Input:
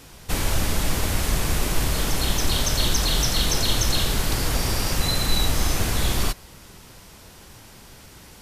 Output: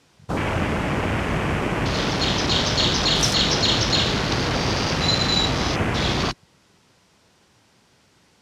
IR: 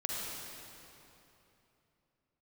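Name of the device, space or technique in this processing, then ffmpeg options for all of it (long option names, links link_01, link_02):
over-cleaned archive recording: -af "highpass=110,lowpass=6900,afwtdn=0.0251,volume=6dB"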